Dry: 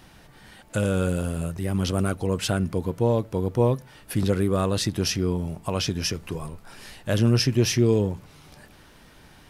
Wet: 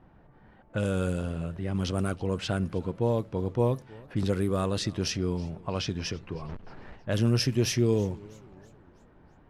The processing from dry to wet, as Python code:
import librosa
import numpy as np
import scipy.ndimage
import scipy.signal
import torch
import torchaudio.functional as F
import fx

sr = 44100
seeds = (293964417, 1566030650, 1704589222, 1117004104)

y = fx.halfwave_hold(x, sr, at=(6.48, 6.95), fade=0.02)
y = fx.env_lowpass(y, sr, base_hz=1000.0, full_db=-17.5)
y = fx.echo_warbled(y, sr, ms=320, feedback_pct=46, rate_hz=2.8, cents=166, wet_db=-23)
y = F.gain(torch.from_numpy(y), -4.5).numpy()